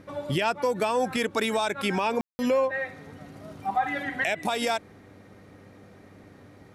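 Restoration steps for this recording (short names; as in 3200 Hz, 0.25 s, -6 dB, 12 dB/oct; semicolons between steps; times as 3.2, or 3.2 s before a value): de-hum 98.4 Hz, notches 5; room tone fill 2.21–2.39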